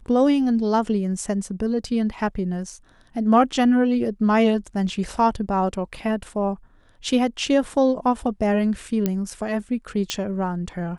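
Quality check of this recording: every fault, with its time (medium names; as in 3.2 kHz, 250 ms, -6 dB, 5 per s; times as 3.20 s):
9.06 s: pop -9 dBFS
10.10 s: pop -9 dBFS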